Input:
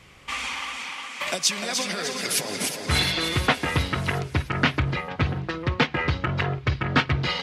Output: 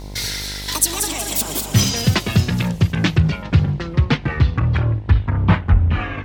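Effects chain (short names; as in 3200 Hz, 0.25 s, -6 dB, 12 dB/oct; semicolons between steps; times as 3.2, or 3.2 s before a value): speed glide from 184% -> 54%; tone controls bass +13 dB, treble +5 dB; buzz 50 Hz, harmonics 21, -35 dBFS -6 dB/oct; vocal rider within 4 dB 2 s; gain -1 dB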